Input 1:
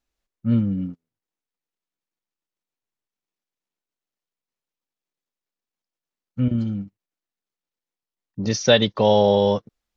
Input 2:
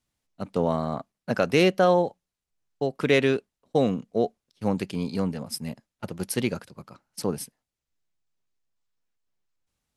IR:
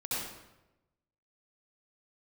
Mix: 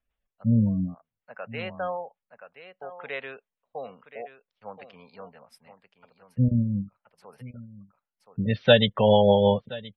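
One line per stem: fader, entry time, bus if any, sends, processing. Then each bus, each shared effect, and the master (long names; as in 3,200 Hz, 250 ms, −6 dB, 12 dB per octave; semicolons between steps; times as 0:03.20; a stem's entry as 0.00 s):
+2.5 dB, 0.00 s, no send, echo send −19.5 dB, Butterworth low-pass 3,600 Hz 48 dB per octave; rotating-speaker cabinet horn 6.3 Hz
−7.0 dB, 0.00 s, no send, echo send −12.5 dB, three-way crossover with the lows and the highs turned down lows −19 dB, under 460 Hz, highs −17 dB, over 3,000 Hz; automatic ducking −13 dB, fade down 0.95 s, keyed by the first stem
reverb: not used
echo: single-tap delay 1,025 ms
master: gate on every frequency bin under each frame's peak −30 dB strong; parametric band 330 Hz −14 dB 0.5 octaves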